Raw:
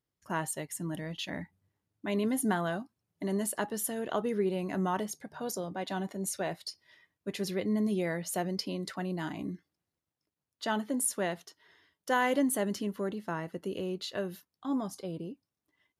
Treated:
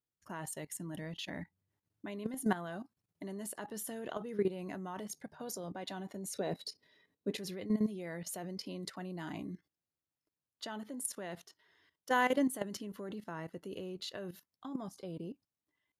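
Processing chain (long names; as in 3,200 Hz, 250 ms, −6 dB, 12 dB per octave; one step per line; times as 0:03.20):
output level in coarse steps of 14 dB
0:06.34–0:07.37: hollow resonant body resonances 250/430/3,900 Hz, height 14 dB, ringing for 30 ms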